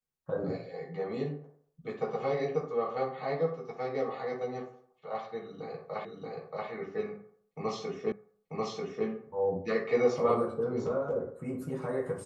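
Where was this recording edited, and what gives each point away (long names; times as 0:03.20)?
0:06.05: the same again, the last 0.63 s
0:08.12: the same again, the last 0.94 s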